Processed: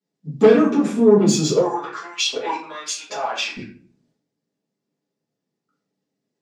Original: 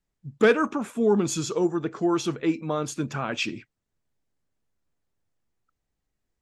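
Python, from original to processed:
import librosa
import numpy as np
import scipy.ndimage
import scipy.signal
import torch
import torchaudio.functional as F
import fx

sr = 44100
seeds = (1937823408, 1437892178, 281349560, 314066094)

y = scipy.signal.sosfilt(scipy.signal.butter(2, 8800.0, 'lowpass', fs=sr, output='sos'), x)
y = fx.peak_eq(y, sr, hz=250.0, db=12.0, octaves=2.6)
y = fx.transient(y, sr, attack_db=6, sustain_db=10)
y = fx.peak_eq(y, sr, hz=4900.0, db=8.0, octaves=0.93)
y = 10.0 ** (-5.0 / 20.0) * np.tanh(y / 10.0 ** (-5.0 / 20.0))
y = scipy.signal.sosfilt(scipy.signal.butter(4, 170.0, 'highpass', fs=sr, output='sos'), y)
y = fx.filter_lfo_highpass(y, sr, shape='saw_up', hz=1.3, low_hz=590.0, high_hz=3500.0, q=3.6, at=(1.56, 3.57))
y = fx.room_shoebox(y, sr, seeds[0], volume_m3=36.0, walls='mixed', distance_m=1.4)
y = y * librosa.db_to_amplitude(-12.5)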